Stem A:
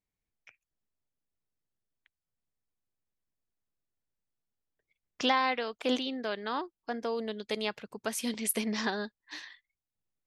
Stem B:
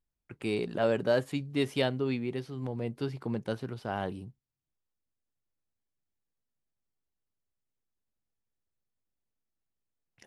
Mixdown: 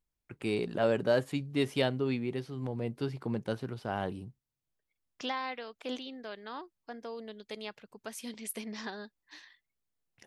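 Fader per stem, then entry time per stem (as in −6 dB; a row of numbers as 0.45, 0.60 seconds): −8.5, −0.5 decibels; 0.00, 0.00 seconds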